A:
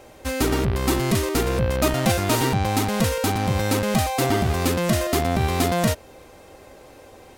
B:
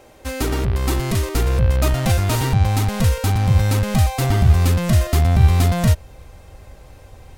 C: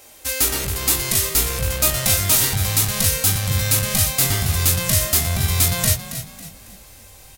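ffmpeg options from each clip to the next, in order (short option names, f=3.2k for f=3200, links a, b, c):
-af "asubboost=boost=8.5:cutoff=110,volume=-1dB"
-filter_complex "[0:a]asplit=2[a][b];[b]adelay=21,volume=-4.5dB[c];[a][c]amix=inputs=2:normalize=0,asplit=5[d][e][f][g][h];[e]adelay=275,afreqshift=33,volume=-12dB[i];[f]adelay=550,afreqshift=66,volume=-20.6dB[j];[g]adelay=825,afreqshift=99,volume=-29.3dB[k];[h]adelay=1100,afreqshift=132,volume=-37.9dB[l];[d][i][j][k][l]amix=inputs=5:normalize=0,crystalizer=i=9.5:c=0,volume=-9dB"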